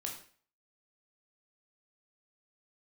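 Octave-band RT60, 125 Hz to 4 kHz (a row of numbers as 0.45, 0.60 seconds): 0.45, 0.45, 0.45, 0.45, 0.45, 0.40 seconds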